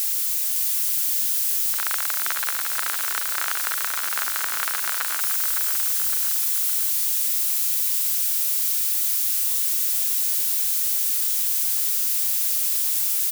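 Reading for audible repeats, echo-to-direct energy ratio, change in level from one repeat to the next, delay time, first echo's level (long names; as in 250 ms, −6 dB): 3, −4.5 dB, −5.5 dB, 561 ms, −6.0 dB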